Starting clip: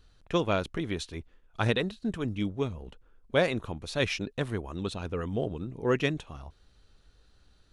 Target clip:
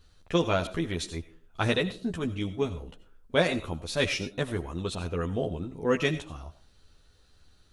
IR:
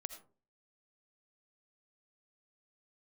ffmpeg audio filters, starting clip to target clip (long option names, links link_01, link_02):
-filter_complex "[0:a]asplit=2[link_01][link_02];[1:a]atrim=start_sample=2205,highshelf=frequency=4500:gain=11.5,adelay=12[link_03];[link_02][link_03]afir=irnorm=-1:irlink=0,volume=-2dB[link_04];[link_01][link_04]amix=inputs=2:normalize=0"